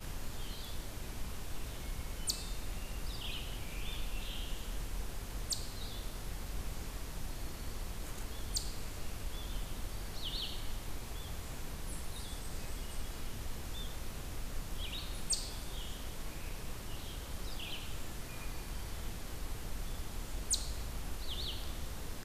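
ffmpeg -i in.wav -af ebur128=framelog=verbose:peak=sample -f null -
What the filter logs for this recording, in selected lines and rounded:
Integrated loudness:
  I:         -42.6 LUFS
  Threshold: -52.6 LUFS
Loudness range:
  LRA:         3.0 LU
  Threshold: -62.7 LUFS
  LRA low:   -44.5 LUFS
  LRA high:  -41.5 LUFS
Sample peak:
  Peak:      -21.1 dBFS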